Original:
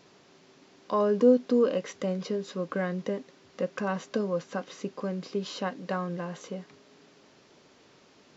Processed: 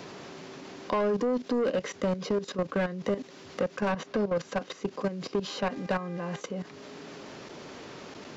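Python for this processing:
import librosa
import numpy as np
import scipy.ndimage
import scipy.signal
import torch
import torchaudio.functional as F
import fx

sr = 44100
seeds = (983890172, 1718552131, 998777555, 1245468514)

y = fx.level_steps(x, sr, step_db=15)
y = 10.0 ** (-30.0 / 20.0) * np.tanh(y / 10.0 ** (-30.0 / 20.0))
y = fx.air_absorb(y, sr, metres=94.0, at=(3.92, 4.36))
y = fx.dmg_buzz(y, sr, base_hz=400.0, harmonics=6, level_db=-60.0, tilt_db=-4, odd_only=False, at=(5.45, 6.39), fade=0.02)
y = fx.band_squash(y, sr, depth_pct=40)
y = y * 10.0 ** (8.5 / 20.0)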